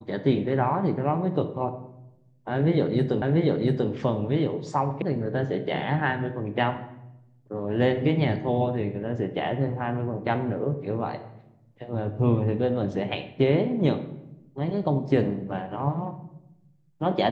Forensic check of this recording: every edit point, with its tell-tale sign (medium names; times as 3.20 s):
3.22 s: repeat of the last 0.69 s
5.02 s: sound stops dead